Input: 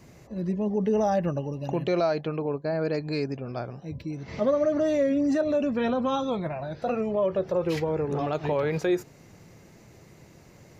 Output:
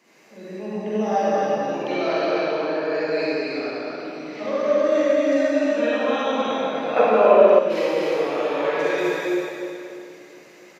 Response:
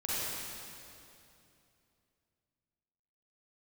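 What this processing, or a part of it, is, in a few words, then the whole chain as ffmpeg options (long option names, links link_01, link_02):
stadium PA: -filter_complex "[0:a]highpass=frequency=250:width=0.5412,highpass=frequency=250:width=1.3066,equalizer=frequency=2300:width_type=o:width=2.2:gain=8,aecho=1:1:169.1|256.6:0.251|0.708[link_01];[1:a]atrim=start_sample=2205[link_02];[link_01][link_02]afir=irnorm=-1:irlink=0,asettb=1/sr,asplit=3[link_03][link_04][link_05];[link_03]atrim=end=6.964[link_06];[link_04]atrim=start=6.96:end=7.59,asetpts=PTS-STARTPTS,afade=type=in:duration=0.004:curve=qsin,afade=type=out:start_time=0.626:duration=0.004:curve=qsin,equalizer=frequency=810:width_type=o:width=2.9:gain=10.5[link_07];[link_05]atrim=start=7.586[link_08];[link_06][link_07]acrossfade=duration=0.004:curve1=hsin:curve2=qsin[link_09];[link_09][link_08]acrossfade=duration=0.004:curve1=qsin:curve2=hsin,volume=-5.5dB"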